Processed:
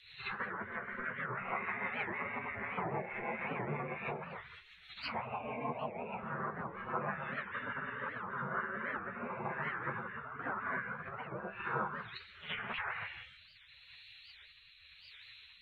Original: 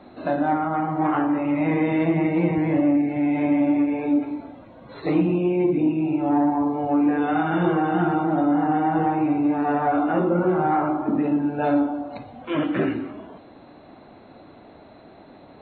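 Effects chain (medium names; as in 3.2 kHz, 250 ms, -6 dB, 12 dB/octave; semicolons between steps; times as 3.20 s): three-band isolator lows -24 dB, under 190 Hz, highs -14 dB, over 2.1 kHz; low-pass that closes with the level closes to 1.1 kHz, closed at -20.5 dBFS; spectral gate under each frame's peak -30 dB weak; treble shelf 3 kHz +11 dB; in parallel at -0.5 dB: compression, threshold -55 dBFS, peak gain reduction 14 dB; on the sum: rotary cabinet horn 6.3 Hz, later 0.9 Hz, at 8.21 s; flange 1.7 Hz, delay 8.1 ms, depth 8.4 ms, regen +48%; on a send: reverse echo 68 ms -10 dB; on the sum: warped record 78 rpm, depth 250 cents; trim +12.5 dB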